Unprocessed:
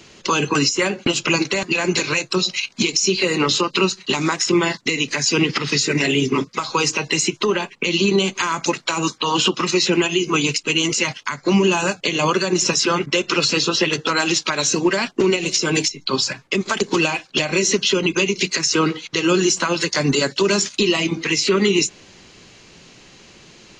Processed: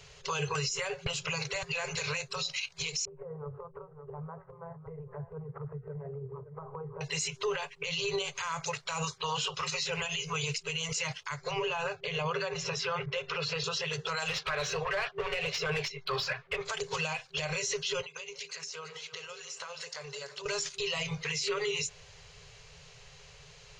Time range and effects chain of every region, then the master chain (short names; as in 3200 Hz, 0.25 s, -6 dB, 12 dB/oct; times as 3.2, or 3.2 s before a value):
3.05–7.01 Bessel low-pass 690 Hz, order 8 + echo 0.564 s -18.5 dB + compressor 4:1, threshold -29 dBFS
11.51–13.64 LPF 3300 Hz + bell 330 Hz +7.5 dB 0.54 oct
14.28–16.65 LPF 3700 Hz + bell 900 Hz -8 dB 0.22 oct + overdrive pedal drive 17 dB, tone 1600 Hz, clips at -7 dBFS
18.01–20.46 HPF 280 Hz + compressor 16:1, threshold -29 dBFS + split-band echo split 820 Hz, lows 0.169 s, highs 0.333 s, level -13 dB
whole clip: FFT band-reject 170–390 Hz; limiter -16 dBFS; low shelf 98 Hz +11 dB; gain -8 dB